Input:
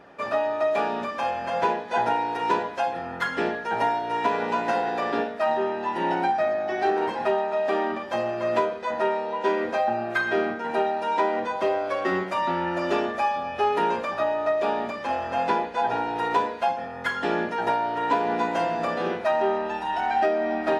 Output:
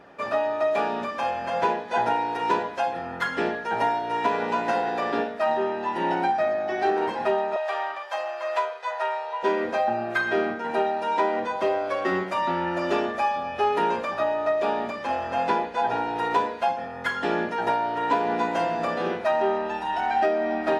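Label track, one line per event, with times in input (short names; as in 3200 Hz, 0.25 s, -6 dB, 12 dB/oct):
7.560000	9.430000	HPF 650 Hz 24 dB/oct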